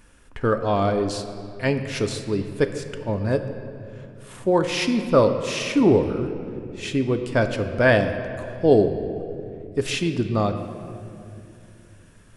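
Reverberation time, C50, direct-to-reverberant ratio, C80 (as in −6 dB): 2.5 s, 8.5 dB, 6.5 dB, 9.5 dB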